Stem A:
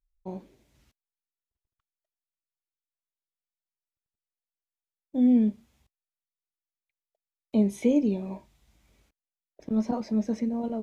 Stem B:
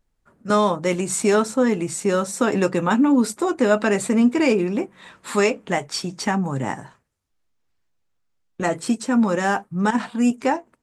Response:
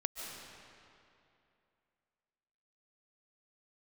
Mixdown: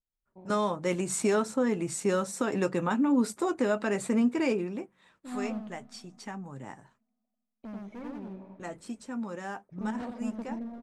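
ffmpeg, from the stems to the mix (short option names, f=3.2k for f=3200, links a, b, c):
-filter_complex "[0:a]lowpass=2.3k,volume=25.5dB,asoftclip=hard,volume=-25.5dB,adelay=100,volume=-9dB,asplit=3[a][b][c];[b]volume=-14.5dB[d];[c]volume=-5.5dB[e];[1:a]agate=range=-13dB:threshold=-49dB:ratio=16:detection=peak,dynaudnorm=f=100:g=11:m=11.5dB,adynamicequalizer=threshold=0.0398:dfrequency=2300:dqfactor=0.7:tfrequency=2300:tqfactor=0.7:attack=5:release=100:ratio=0.375:range=1.5:mode=cutabove:tftype=highshelf,volume=-12dB,afade=t=out:st=4.21:d=0.76:silence=0.266073,asplit=2[f][g];[g]apad=whole_len=481698[h];[a][h]sidechaingate=range=-8dB:threshold=-49dB:ratio=16:detection=peak[i];[2:a]atrim=start_sample=2205[j];[d][j]afir=irnorm=-1:irlink=0[k];[e]aecho=0:1:91:1[l];[i][f][k][l]amix=inputs=4:normalize=0,alimiter=limit=-17dB:level=0:latency=1:release=313"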